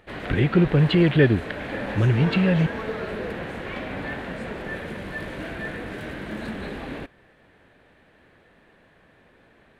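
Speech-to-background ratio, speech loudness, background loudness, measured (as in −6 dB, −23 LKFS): 12.0 dB, −20.5 LKFS, −32.5 LKFS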